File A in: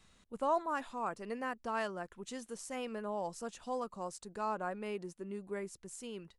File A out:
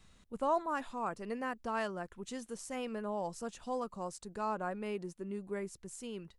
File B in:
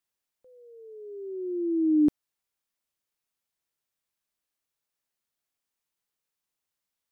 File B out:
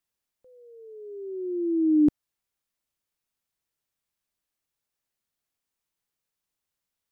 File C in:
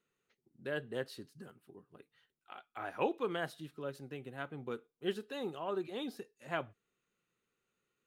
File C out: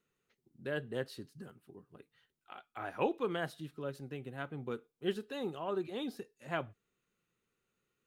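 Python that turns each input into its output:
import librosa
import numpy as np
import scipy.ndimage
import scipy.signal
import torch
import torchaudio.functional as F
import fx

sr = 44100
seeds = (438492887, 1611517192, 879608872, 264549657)

y = fx.low_shelf(x, sr, hz=190.0, db=6.0)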